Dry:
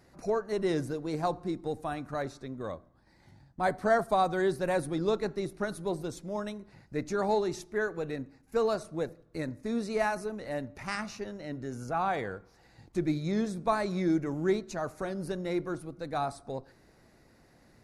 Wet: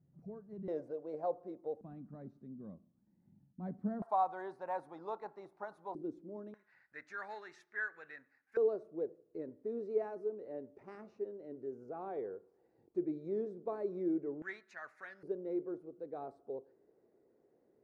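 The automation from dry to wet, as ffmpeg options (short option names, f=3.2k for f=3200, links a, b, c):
-af "asetnsamples=n=441:p=0,asendcmd='0.68 bandpass f 550;1.81 bandpass f 200;4.02 bandpass f 880;5.95 bandpass f 320;6.54 bandpass f 1700;8.57 bandpass f 410;14.42 bandpass f 1800;15.23 bandpass f 420',bandpass=f=150:t=q:w=4.2:csg=0"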